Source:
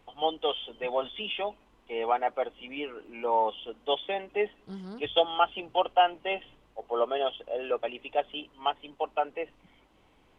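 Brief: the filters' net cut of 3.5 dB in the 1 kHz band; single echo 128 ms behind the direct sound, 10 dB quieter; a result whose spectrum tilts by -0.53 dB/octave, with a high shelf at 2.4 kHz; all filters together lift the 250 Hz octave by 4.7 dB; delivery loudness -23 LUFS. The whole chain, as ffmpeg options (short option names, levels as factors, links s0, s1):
-af "equalizer=f=250:t=o:g=7,equalizer=f=1000:t=o:g=-7,highshelf=f=2400:g=6.5,aecho=1:1:128:0.316,volume=2.37"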